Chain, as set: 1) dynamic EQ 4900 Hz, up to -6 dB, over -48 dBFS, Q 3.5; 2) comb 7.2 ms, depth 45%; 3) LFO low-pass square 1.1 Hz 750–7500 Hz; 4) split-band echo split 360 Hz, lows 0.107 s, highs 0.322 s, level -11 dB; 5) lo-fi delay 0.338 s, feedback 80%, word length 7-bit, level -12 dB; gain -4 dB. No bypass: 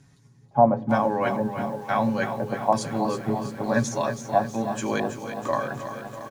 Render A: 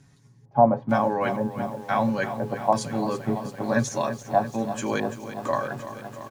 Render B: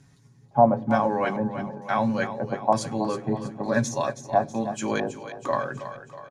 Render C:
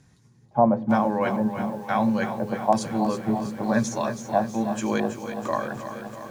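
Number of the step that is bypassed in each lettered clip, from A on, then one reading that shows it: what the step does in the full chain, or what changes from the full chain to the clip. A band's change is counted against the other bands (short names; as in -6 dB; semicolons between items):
4, momentary loudness spread change +1 LU; 5, momentary loudness spread change +3 LU; 2, 250 Hz band +4.0 dB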